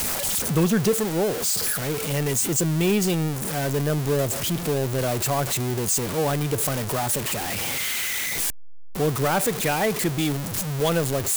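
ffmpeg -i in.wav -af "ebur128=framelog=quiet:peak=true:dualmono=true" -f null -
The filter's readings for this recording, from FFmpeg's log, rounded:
Integrated loudness:
  I:         -20.2 LUFS
  Threshold: -30.3 LUFS
Loudness range:
  LRA:         1.9 LU
  Threshold: -40.5 LUFS
  LRA low:   -21.1 LUFS
  LRA high:  -19.2 LUFS
True peak:
  Peak:      -12.3 dBFS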